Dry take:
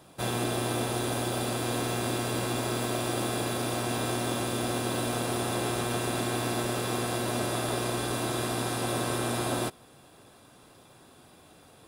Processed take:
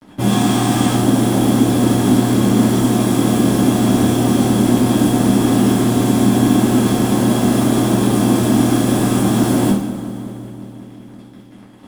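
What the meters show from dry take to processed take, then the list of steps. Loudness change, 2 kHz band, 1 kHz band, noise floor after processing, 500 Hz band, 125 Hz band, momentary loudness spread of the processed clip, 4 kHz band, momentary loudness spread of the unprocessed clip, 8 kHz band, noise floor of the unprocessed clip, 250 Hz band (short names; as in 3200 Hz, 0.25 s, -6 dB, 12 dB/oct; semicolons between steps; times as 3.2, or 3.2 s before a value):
+15.5 dB, +7.0 dB, +10.5 dB, -40 dBFS, +11.5 dB, +16.0 dB, 3 LU, +8.5 dB, 1 LU, +9.5 dB, -56 dBFS, +21.0 dB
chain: Wiener smoothing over 15 samples; spectral gain 0.3–0.93, 700–9200 Hz +9 dB; bell 9900 Hz +11 dB 1.7 oct; in parallel at -2 dB: negative-ratio compressor -35 dBFS, ratio -1; on the sum: fuzz box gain 38 dB, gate -42 dBFS; small resonant body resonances 210/3300 Hz, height 18 dB, ringing for 40 ms; on a send: darkening echo 0.184 s, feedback 79%, low-pass 2100 Hz, level -14 dB; on the sum: two-slope reverb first 0.55 s, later 3.4 s, from -19 dB, DRR -8.5 dB; gain -16 dB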